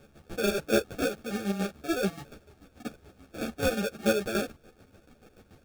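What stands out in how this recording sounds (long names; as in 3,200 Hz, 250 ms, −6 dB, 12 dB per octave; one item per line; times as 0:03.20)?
chopped level 6.9 Hz, depth 60%, duty 40%
aliases and images of a low sample rate 1,000 Hz, jitter 0%
a shimmering, thickened sound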